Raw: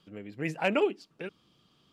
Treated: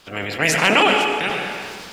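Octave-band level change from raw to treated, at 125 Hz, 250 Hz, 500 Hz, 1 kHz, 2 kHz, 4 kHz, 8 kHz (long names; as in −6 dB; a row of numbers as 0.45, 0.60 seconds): +10.5 dB, +9.5 dB, +8.5 dB, +17.5 dB, +19.0 dB, +23.0 dB, can't be measured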